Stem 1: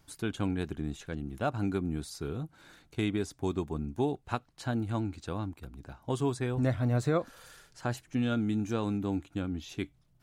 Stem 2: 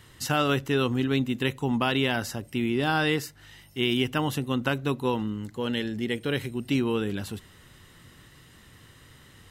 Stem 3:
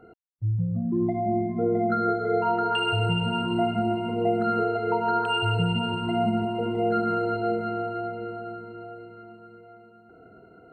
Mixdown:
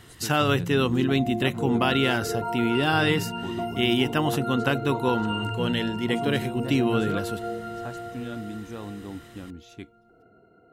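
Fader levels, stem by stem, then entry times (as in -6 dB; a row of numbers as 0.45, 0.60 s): -6.0, +2.0, -6.0 dB; 0.00, 0.00, 0.00 s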